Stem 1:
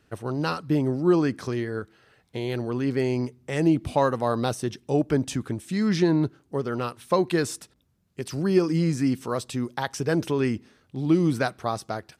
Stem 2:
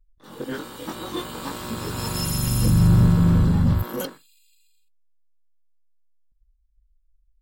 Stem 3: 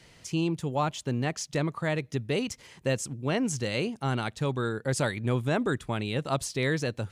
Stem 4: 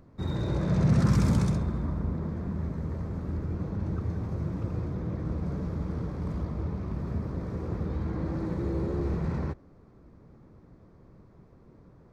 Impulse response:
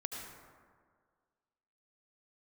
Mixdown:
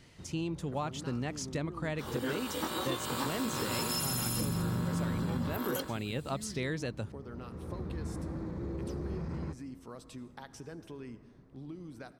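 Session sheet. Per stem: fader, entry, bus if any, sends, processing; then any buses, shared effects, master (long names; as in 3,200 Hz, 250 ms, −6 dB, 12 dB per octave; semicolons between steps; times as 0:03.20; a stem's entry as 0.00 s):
−17.0 dB, 0.60 s, send −9.5 dB, downward compressor 6 to 1, threshold −28 dBFS, peak gain reduction 13 dB
+2.0 dB, 1.75 s, no send, high-pass filter 370 Hz 6 dB per octave
−5.0 dB, 0.00 s, no send, no processing
−7.5 dB, 0.00 s, send −18 dB, brickwall limiter −23.5 dBFS, peak gain reduction 11 dB; automatic ducking −14 dB, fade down 0.30 s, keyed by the third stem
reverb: on, RT60 1.8 s, pre-delay 67 ms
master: parametric band 250 Hz +2.5 dB 0.44 octaves; downward compressor 6 to 1, threshold −30 dBFS, peak gain reduction 11.5 dB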